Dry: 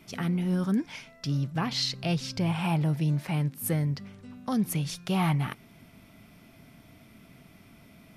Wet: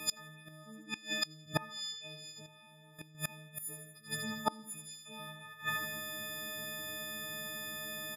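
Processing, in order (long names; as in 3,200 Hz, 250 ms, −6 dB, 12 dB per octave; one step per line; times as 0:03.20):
every partial snapped to a pitch grid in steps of 6 semitones
low-shelf EQ 160 Hz −7 dB
repeating echo 79 ms, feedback 56%, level −5 dB
gate with flip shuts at −22 dBFS, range −29 dB
parametric band 1,000 Hz +4 dB 0.77 octaves
notch comb filter 990 Hz
0:02.46–0:03.15: output level in coarse steps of 13 dB
level +6 dB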